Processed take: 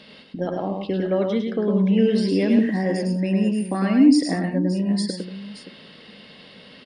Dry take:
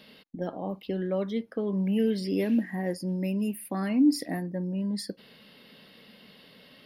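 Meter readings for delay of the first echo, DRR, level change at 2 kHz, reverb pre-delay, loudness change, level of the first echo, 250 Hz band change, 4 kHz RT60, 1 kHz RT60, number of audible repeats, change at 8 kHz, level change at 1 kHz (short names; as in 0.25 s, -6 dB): 0.105 s, none, +8.5 dB, none, +8.0 dB, -4.0 dB, +8.0 dB, none, none, 3, +6.0 dB, +8.0 dB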